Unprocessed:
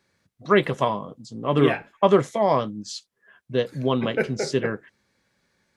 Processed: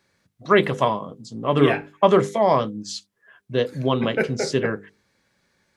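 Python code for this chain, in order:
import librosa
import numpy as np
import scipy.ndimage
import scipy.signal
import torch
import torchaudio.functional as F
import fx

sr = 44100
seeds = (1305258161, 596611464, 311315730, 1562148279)

y = fx.hum_notches(x, sr, base_hz=50, count=10)
y = F.gain(torch.from_numpy(y), 2.5).numpy()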